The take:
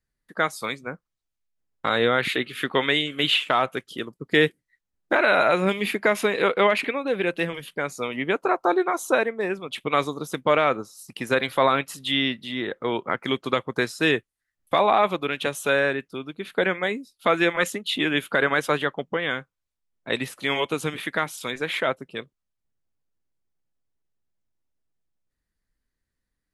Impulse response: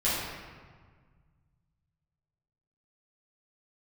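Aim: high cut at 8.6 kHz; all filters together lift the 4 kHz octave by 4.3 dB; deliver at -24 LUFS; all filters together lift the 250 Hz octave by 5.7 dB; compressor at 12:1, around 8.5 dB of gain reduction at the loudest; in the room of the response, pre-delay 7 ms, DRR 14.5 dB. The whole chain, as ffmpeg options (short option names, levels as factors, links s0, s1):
-filter_complex "[0:a]lowpass=8600,equalizer=f=250:t=o:g=7.5,equalizer=f=4000:t=o:g=5.5,acompressor=threshold=0.0891:ratio=12,asplit=2[s0][s1];[1:a]atrim=start_sample=2205,adelay=7[s2];[s1][s2]afir=irnorm=-1:irlink=0,volume=0.0501[s3];[s0][s3]amix=inputs=2:normalize=0,volume=1.41"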